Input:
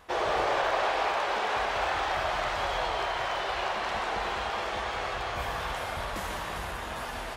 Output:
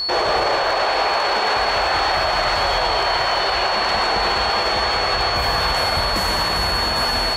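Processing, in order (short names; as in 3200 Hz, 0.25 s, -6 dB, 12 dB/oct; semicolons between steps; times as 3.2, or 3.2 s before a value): whine 4400 Hz -35 dBFS; maximiser +23.5 dB; gain -9 dB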